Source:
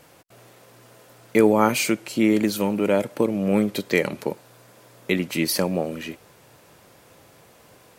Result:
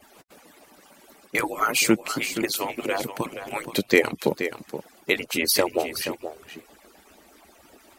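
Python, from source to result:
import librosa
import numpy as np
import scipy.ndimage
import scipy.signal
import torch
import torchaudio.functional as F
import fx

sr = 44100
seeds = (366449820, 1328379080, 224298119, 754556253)

p1 = fx.hpss_only(x, sr, part='percussive')
p2 = fx.peak_eq(p1, sr, hz=430.0, db=-13.5, octaves=0.93, at=(3.1, 3.56))
p3 = p2 + fx.echo_single(p2, sr, ms=475, db=-10.0, dry=0)
y = F.gain(torch.from_numpy(p3), 3.5).numpy()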